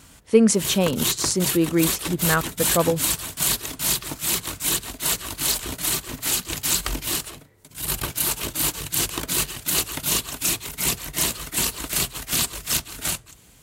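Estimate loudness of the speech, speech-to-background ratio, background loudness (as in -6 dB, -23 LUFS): -22.0 LUFS, 1.5 dB, -23.5 LUFS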